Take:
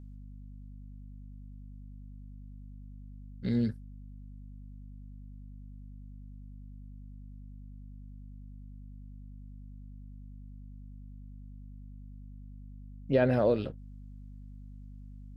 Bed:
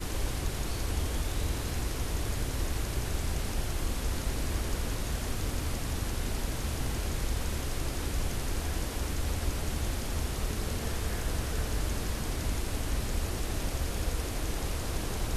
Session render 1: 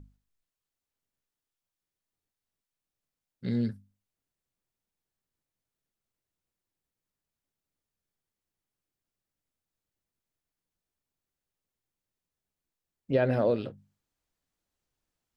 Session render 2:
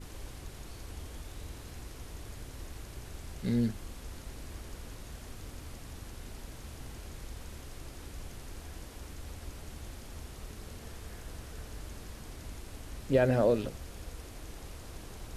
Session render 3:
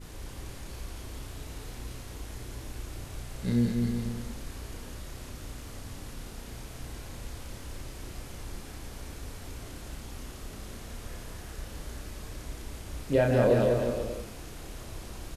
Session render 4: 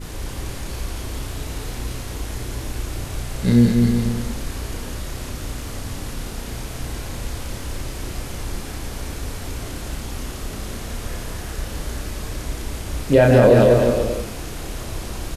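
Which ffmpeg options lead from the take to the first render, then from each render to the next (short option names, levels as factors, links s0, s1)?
-af "bandreject=f=50:t=h:w=6,bandreject=f=100:t=h:w=6,bandreject=f=150:t=h:w=6,bandreject=f=200:t=h:w=6,bandreject=f=250:t=h:w=6"
-filter_complex "[1:a]volume=0.237[s0];[0:a][s0]amix=inputs=2:normalize=0"
-filter_complex "[0:a]asplit=2[s0][s1];[s1]adelay=33,volume=0.668[s2];[s0][s2]amix=inputs=2:normalize=0,aecho=1:1:200|360|488|590.4|672.3:0.631|0.398|0.251|0.158|0.1"
-af "volume=3.98,alimiter=limit=0.708:level=0:latency=1"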